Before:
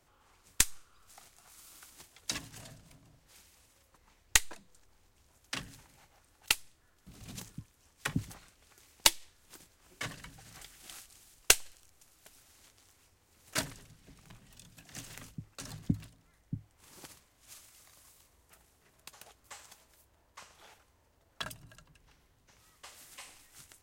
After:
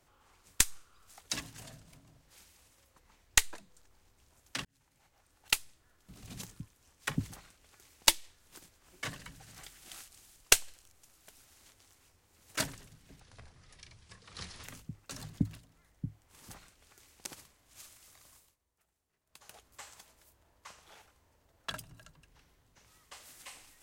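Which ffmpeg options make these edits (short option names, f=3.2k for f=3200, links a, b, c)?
-filter_complex "[0:a]asplit=9[a][b][c][d][e][f][g][h][i];[a]atrim=end=1.202[j];[b]atrim=start=2.178:end=5.63,asetpts=PTS-STARTPTS,afade=t=out:st=3.448:d=0.004:c=hsin[k];[c]atrim=start=5.63:end=14.184,asetpts=PTS-STARTPTS,afade=t=in:d=0.91[l];[d]atrim=start=14.18:end=15.13,asetpts=PTS-STARTPTS,asetrate=29106,aresample=44100,atrim=end_sample=63477,asetpts=PTS-STARTPTS[m];[e]atrim=start=15.126:end=16.982[n];[f]atrim=start=8.288:end=9.062[o];[g]atrim=start=16.978:end=18.29,asetpts=PTS-STARTPTS,afade=t=out:st=1.062:d=0.25:silence=0.141254[p];[h]atrim=start=18.29:end=18.99,asetpts=PTS-STARTPTS,volume=-17dB[q];[i]atrim=start=18.99,asetpts=PTS-STARTPTS,afade=t=in:d=0.25:silence=0.141254[r];[k][l]concat=n=2:v=0:a=1[s];[j][s]acrossfade=d=0.004:c1=hsin:c2=hsin[t];[t][m]acrossfade=d=0.004:c1=hsin:c2=hsin[u];[u][n]acrossfade=d=0.004:c1=hsin:c2=hsin[v];[v][o]acrossfade=d=0.004:c1=hsin:c2=hsin[w];[p][q][r]concat=n=3:v=0:a=1[x];[w][x]acrossfade=d=0.004:c1=hsin:c2=hsin"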